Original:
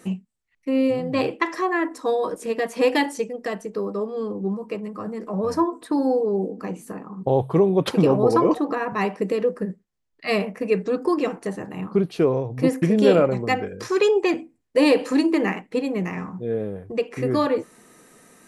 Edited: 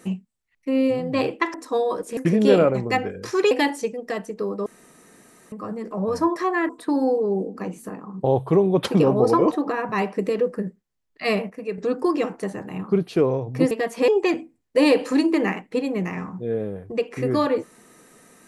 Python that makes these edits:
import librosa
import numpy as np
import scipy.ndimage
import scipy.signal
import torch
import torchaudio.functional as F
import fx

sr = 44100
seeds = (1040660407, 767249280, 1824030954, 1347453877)

y = fx.edit(x, sr, fx.move(start_s=1.54, length_s=0.33, to_s=5.72),
    fx.swap(start_s=2.5, length_s=0.37, other_s=12.74, other_length_s=1.34),
    fx.room_tone_fill(start_s=4.02, length_s=0.86),
    fx.clip_gain(start_s=10.53, length_s=0.28, db=-8.0), tone=tone)